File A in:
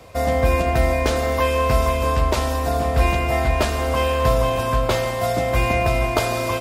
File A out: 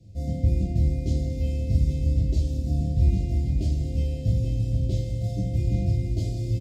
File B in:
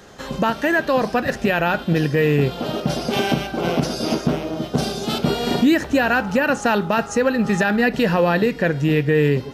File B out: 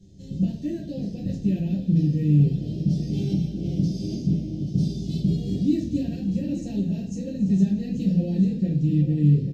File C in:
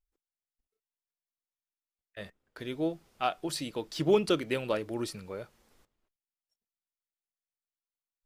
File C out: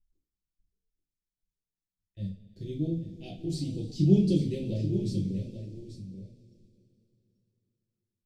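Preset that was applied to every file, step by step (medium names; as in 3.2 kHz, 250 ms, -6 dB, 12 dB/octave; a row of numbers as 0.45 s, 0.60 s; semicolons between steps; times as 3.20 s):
Chebyshev band-stop 150–8500 Hz, order 2; distance through air 200 m; delay 835 ms -11 dB; two-slope reverb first 0.32 s, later 3.2 s, from -21 dB, DRR -5.5 dB; peak normalisation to -9 dBFS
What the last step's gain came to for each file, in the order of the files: -1.5 dB, -1.5 dB, +9.0 dB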